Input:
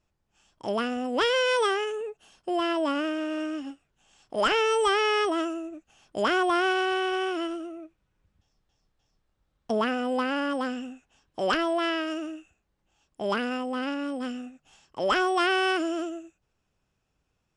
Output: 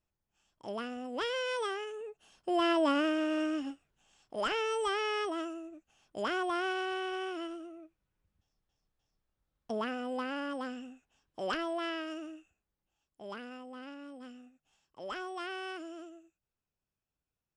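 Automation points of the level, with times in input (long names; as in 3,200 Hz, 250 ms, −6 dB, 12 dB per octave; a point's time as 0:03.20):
0:01.91 −10.5 dB
0:02.67 −1 dB
0:03.61 −1 dB
0:04.43 −9 dB
0:12.36 −9 dB
0:13.22 −16 dB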